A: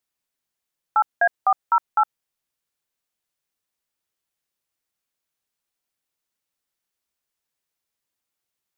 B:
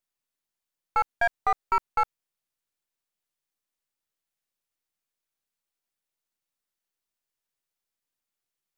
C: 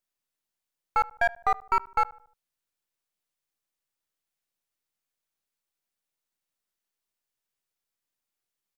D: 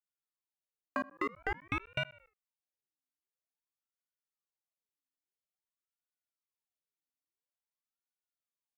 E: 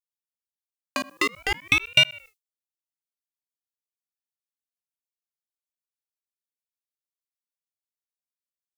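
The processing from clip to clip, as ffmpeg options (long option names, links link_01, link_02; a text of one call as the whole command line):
ffmpeg -i in.wav -af "aeval=exprs='if(lt(val(0),0),0.447*val(0),val(0))':channel_layout=same,volume=-2.5dB" out.wav
ffmpeg -i in.wav -filter_complex "[0:a]asplit=2[link_01][link_02];[link_02]adelay=75,lowpass=frequency=1400:poles=1,volume=-19.5dB,asplit=2[link_03][link_04];[link_04]adelay=75,lowpass=frequency=1400:poles=1,volume=0.48,asplit=2[link_05][link_06];[link_06]adelay=75,lowpass=frequency=1400:poles=1,volume=0.48,asplit=2[link_07][link_08];[link_08]adelay=75,lowpass=frequency=1400:poles=1,volume=0.48[link_09];[link_01][link_03][link_05][link_07][link_09]amix=inputs=5:normalize=0" out.wav
ffmpeg -i in.wav -filter_complex "[0:a]agate=range=-9dB:threshold=-52dB:ratio=16:detection=peak,acrossover=split=490[link_01][link_02];[link_02]acompressor=threshold=-28dB:ratio=4[link_03];[link_01][link_03]amix=inputs=2:normalize=0,aeval=exprs='val(0)*sin(2*PI*870*n/s+870*0.7/0.49*sin(2*PI*0.49*n/s))':channel_layout=same,volume=-3.5dB" out.wav
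ffmpeg -i in.wav -af "aexciter=amount=7.2:drive=7.1:freq=2400,tremolo=f=6.5:d=0.34,agate=range=-33dB:threshold=-52dB:ratio=3:detection=peak,volume=8dB" out.wav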